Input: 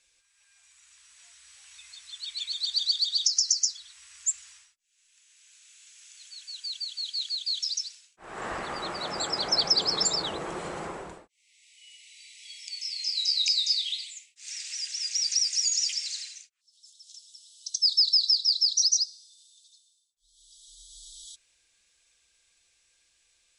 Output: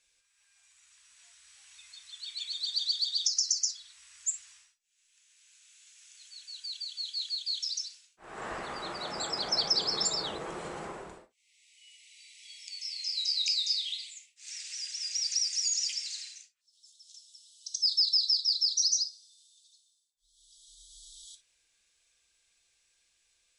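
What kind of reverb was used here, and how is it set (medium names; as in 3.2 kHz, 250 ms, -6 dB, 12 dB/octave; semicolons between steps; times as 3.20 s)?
gated-style reverb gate 80 ms flat, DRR 9 dB; trim -4.5 dB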